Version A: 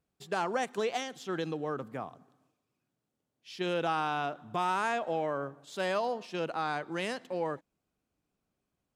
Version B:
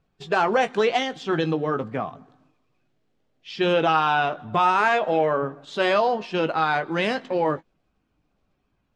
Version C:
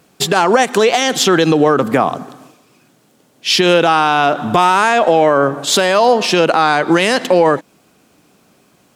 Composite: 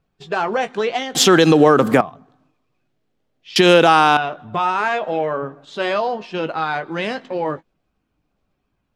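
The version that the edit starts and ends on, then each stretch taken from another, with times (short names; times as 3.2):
B
1.15–2.01 from C
3.56–4.17 from C
not used: A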